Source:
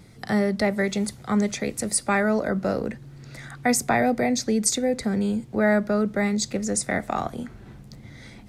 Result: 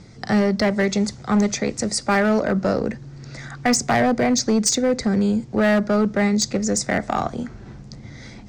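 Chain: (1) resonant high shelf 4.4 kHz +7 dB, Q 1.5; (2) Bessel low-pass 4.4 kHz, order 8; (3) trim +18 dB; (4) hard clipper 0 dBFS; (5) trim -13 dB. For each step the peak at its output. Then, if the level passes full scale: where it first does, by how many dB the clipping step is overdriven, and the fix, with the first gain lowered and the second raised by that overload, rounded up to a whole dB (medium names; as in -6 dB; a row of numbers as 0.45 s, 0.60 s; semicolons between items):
-0.5 dBFS, -10.0 dBFS, +8.0 dBFS, 0.0 dBFS, -13.0 dBFS; step 3, 8.0 dB; step 3 +10 dB, step 5 -5 dB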